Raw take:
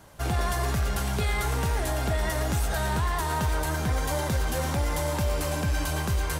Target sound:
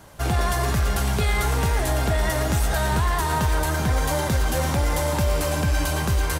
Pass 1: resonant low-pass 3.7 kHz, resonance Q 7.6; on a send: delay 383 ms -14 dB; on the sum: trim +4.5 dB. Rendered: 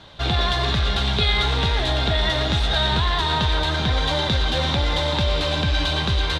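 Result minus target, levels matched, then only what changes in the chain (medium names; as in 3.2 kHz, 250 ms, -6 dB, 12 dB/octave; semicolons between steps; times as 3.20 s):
4 kHz band +10.0 dB
remove: resonant low-pass 3.7 kHz, resonance Q 7.6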